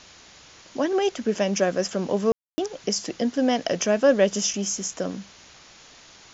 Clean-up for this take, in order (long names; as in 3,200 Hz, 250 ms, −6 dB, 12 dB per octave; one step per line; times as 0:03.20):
ambience match 0:02.32–0:02.58
broadband denoise 20 dB, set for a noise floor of −50 dBFS